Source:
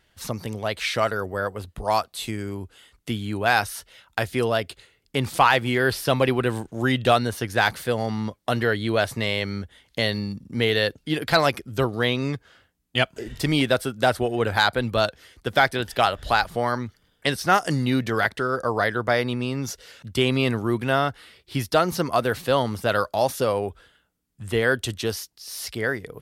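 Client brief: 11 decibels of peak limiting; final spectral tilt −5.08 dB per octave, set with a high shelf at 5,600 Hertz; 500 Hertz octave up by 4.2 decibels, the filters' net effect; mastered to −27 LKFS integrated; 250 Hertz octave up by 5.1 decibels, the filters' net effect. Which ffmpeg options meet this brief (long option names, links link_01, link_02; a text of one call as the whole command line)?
ffmpeg -i in.wav -af "equalizer=frequency=250:width_type=o:gain=5,equalizer=frequency=500:width_type=o:gain=4,highshelf=frequency=5600:gain=-7.5,volume=-0.5dB,alimiter=limit=-14.5dB:level=0:latency=1" out.wav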